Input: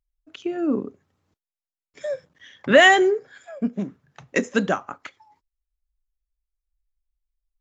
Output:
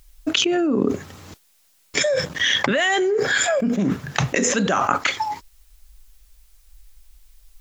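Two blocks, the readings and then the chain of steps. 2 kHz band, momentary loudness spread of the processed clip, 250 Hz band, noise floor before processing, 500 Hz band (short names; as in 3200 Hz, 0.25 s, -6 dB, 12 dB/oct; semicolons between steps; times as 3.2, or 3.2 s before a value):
0.0 dB, 7 LU, +3.0 dB, under -85 dBFS, 0.0 dB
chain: high shelf 2200 Hz +7.5 dB; fast leveller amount 100%; gain -11 dB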